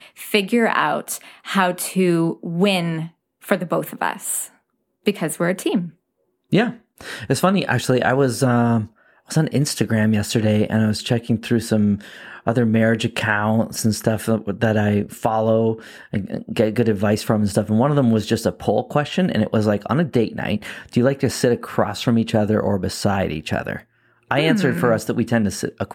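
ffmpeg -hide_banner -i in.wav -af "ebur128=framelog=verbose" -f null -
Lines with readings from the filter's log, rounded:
Integrated loudness:
  I:         -20.1 LUFS
  Threshold: -30.4 LUFS
Loudness range:
  LRA:         3.5 LU
  Threshold: -40.4 LUFS
  LRA low:   -22.7 LUFS
  LRA high:  -19.2 LUFS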